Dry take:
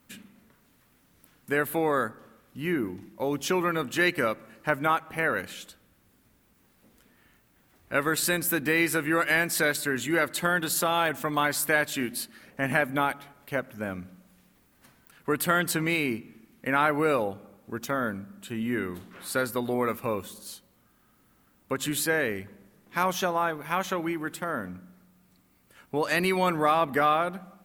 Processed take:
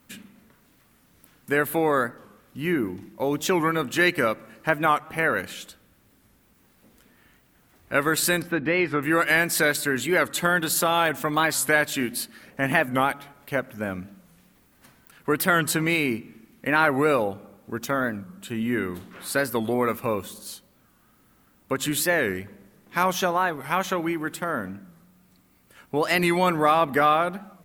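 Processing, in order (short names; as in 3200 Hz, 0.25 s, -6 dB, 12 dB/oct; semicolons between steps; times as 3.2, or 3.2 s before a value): 8.42–9.03 air absorption 340 m; record warp 45 rpm, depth 160 cents; gain +3.5 dB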